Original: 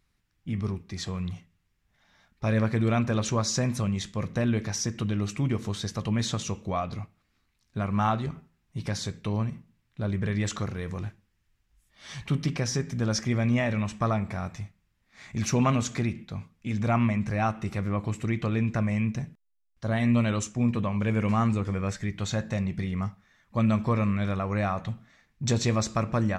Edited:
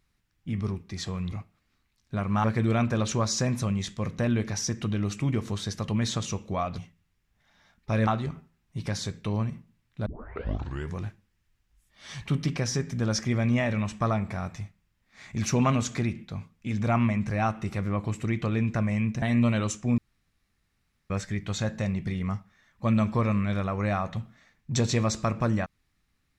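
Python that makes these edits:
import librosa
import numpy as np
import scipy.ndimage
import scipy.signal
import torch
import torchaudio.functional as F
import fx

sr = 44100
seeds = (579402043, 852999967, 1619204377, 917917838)

y = fx.edit(x, sr, fx.swap(start_s=1.32, length_s=1.29, other_s=6.95, other_length_s=1.12),
    fx.tape_start(start_s=10.06, length_s=0.91),
    fx.cut(start_s=19.22, length_s=0.72),
    fx.room_tone_fill(start_s=20.7, length_s=1.12), tone=tone)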